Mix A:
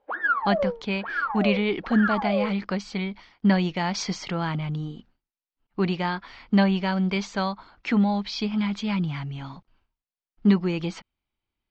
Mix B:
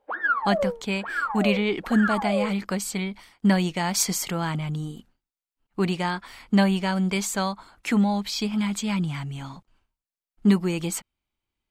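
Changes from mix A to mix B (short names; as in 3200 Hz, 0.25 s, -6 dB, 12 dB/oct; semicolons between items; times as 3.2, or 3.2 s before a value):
speech: remove air absorption 58 m; master: remove steep low-pass 5700 Hz 36 dB/oct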